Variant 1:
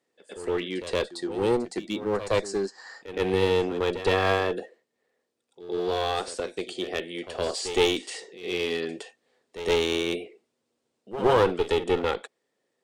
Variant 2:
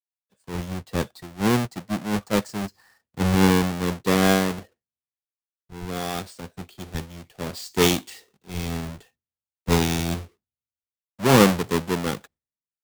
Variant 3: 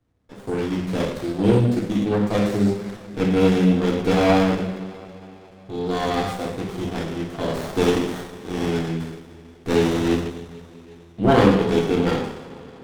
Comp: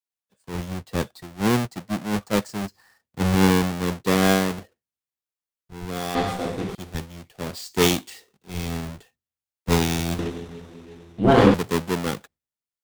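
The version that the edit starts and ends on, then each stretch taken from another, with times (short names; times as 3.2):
2
6.15–6.75 from 3
10.19–11.54 from 3
not used: 1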